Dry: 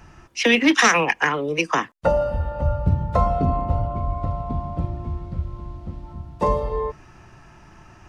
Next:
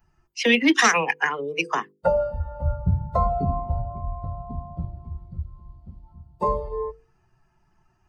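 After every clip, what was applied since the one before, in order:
spectral dynamics exaggerated over time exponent 1.5
mains-hum notches 50/100/150/200/250/300/350/400/450/500 Hz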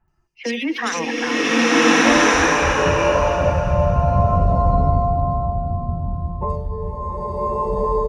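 in parallel at +1 dB: brickwall limiter −15.5 dBFS, peak gain reduction 9.5 dB
on the sum: multiband delay without the direct sound lows, highs 80 ms, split 2,400 Hz
slow-attack reverb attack 1,400 ms, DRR −11.5 dB
level −8.5 dB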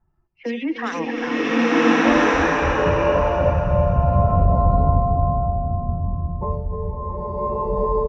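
head-to-tape spacing loss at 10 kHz 25 dB
single-tap delay 303 ms −12 dB
one half of a high-frequency compander decoder only

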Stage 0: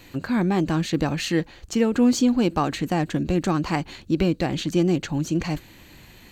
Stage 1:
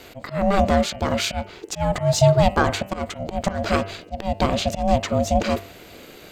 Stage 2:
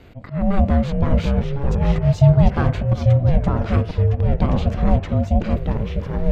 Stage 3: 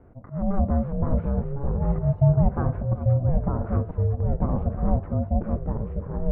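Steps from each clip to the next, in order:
ring modulation 390 Hz; volume swells 186 ms; hum removal 97.35 Hz, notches 32; level +7.5 dB
bass and treble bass +14 dB, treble −14 dB; delay with pitch and tempo change per echo 423 ms, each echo −3 semitones, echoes 2; level −6.5 dB
low-pass filter 1,300 Hz 24 dB per octave; level −6 dB

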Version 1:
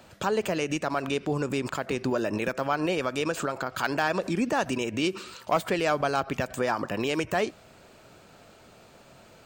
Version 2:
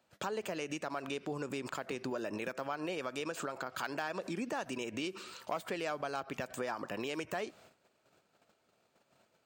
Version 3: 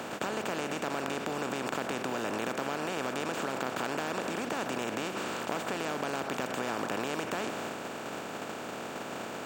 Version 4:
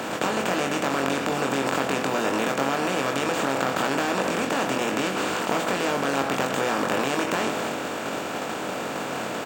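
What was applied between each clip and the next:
noise gate −50 dBFS, range −16 dB; high-pass filter 210 Hz 6 dB per octave; downward compressor 2.5 to 1, threshold −31 dBFS, peak gain reduction 8.5 dB; level −5 dB
compressor on every frequency bin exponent 0.2; level −4.5 dB
double-tracking delay 22 ms −4 dB; on a send at −15 dB: convolution reverb RT60 0.30 s, pre-delay 3 ms; on the sum: level +7.5 dB

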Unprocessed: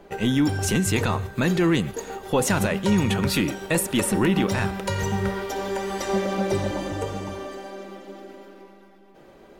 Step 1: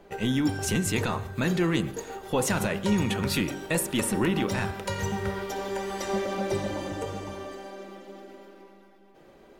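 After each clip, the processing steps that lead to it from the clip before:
hum removal 47.87 Hz, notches 36
level −3.5 dB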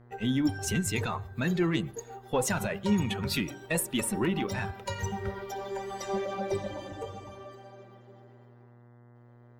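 spectral dynamics exaggerated over time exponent 1.5
harmonic generator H 4 −28 dB, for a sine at −16 dBFS
hum with harmonics 120 Hz, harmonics 17, −55 dBFS −7 dB per octave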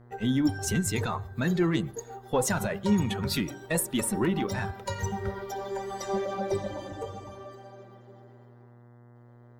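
parametric band 2,600 Hz −6 dB 0.57 octaves
level +2 dB

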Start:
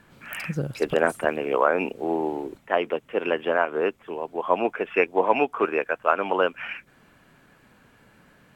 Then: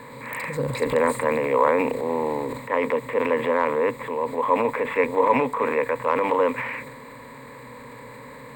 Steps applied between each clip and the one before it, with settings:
compressor on every frequency bin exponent 0.6
EQ curve with evenly spaced ripples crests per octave 1, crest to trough 17 dB
transient designer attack −1 dB, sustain +7 dB
level −6 dB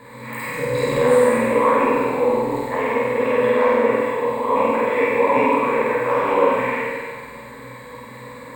on a send: flutter between parallel walls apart 8.3 metres, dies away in 0.91 s
on the sum: dense smooth reverb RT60 1.6 s, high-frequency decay 1×, DRR −5 dB
level −4.5 dB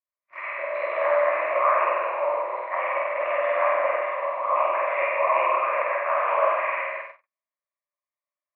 single-sideband voice off tune +87 Hz 510–2,500 Hz
harmonic and percussive parts rebalanced harmonic −4 dB
noise gate −33 dBFS, range −56 dB

